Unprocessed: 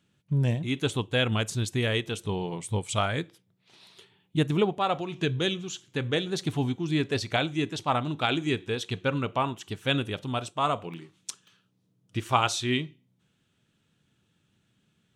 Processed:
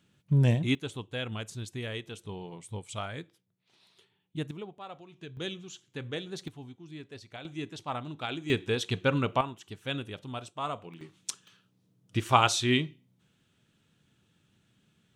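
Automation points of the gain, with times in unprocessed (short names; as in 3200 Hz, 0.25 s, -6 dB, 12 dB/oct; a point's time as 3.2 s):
+2 dB
from 0.75 s -10 dB
from 4.51 s -17.5 dB
from 5.37 s -9 dB
from 6.48 s -18 dB
from 7.45 s -9 dB
from 8.5 s +1 dB
from 9.41 s -8 dB
from 11.01 s +1.5 dB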